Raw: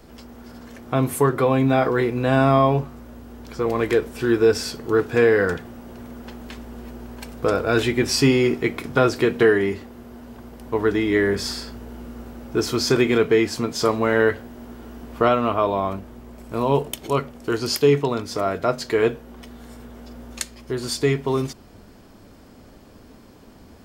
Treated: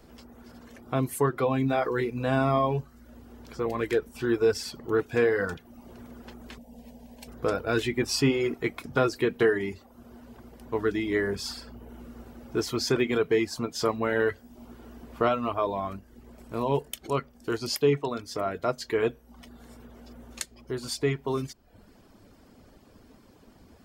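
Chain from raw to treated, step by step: 6.58–7.28 s: static phaser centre 350 Hz, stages 6; reverb removal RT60 0.64 s; trim -6 dB

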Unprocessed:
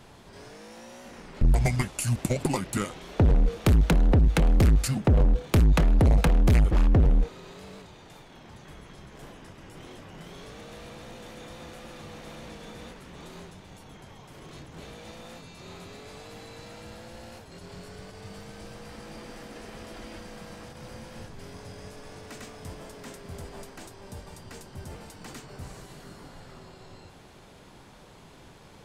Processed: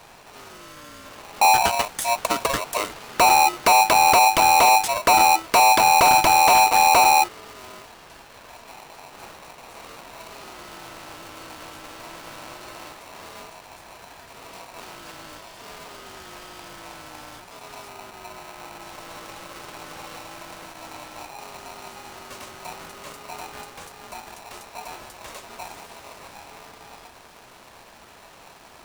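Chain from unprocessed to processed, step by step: 17.88–18.82 s: low-pass 2.2 kHz; polarity switched at an audio rate 820 Hz; trim +3 dB

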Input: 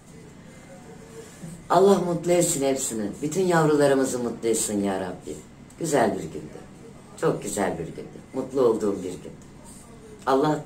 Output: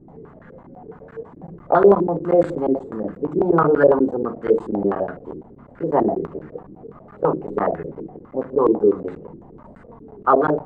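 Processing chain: crackling interface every 0.12 s, samples 512, zero, from 0.39 s; step-sequenced low-pass 12 Hz 330–1500 Hz

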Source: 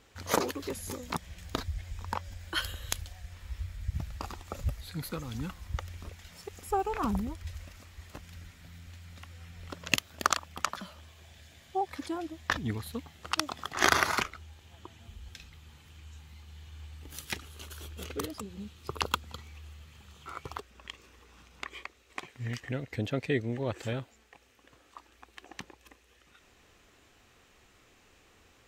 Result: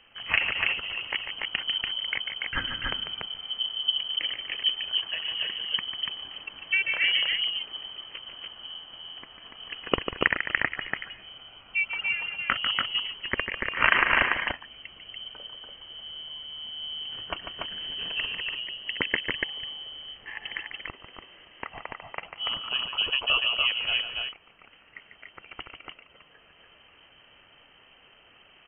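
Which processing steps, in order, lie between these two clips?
on a send: loudspeakers at several distances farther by 50 m -8 dB, 99 m -3 dB; on the sum: frequency inversion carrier 3.1 kHz; trim +3.5 dB

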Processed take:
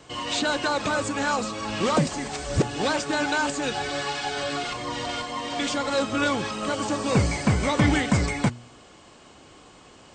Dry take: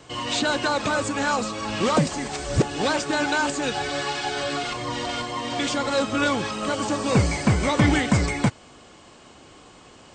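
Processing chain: de-hum 119.6 Hz, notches 3; trim -1.5 dB

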